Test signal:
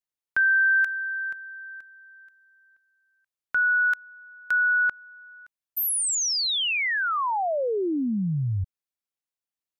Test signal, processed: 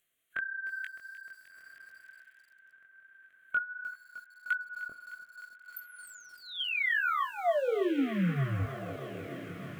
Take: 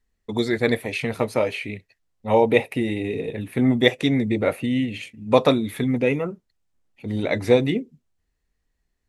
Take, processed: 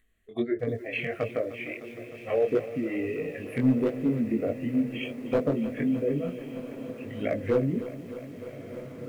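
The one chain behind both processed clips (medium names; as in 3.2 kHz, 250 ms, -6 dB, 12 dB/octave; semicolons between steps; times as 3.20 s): de-hum 106.4 Hz, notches 5; spectral noise reduction 17 dB; gate -52 dBFS, range -11 dB; low-pass that closes with the level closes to 470 Hz, closed at -19 dBFS; bass shelf 220 Hz -7 dB; upward compressor, threshold -43 dBFS; static phaser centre 2.2 kHz, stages 4; small resonant body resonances 680/1100/3200 Hz, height 9 dB, ringing for 35 ms; hard clipper -18 dBFS; chorus 1.5 Hz, delay 18 ms, depth 4.7 ms; on a send: echo that smears into a reverb 1416 ms, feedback 50%, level -14 dB; on the sum: bit-crushed delay 305 ms, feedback 80%, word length 9-bit, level -14.5 dB; trim +3.5 dB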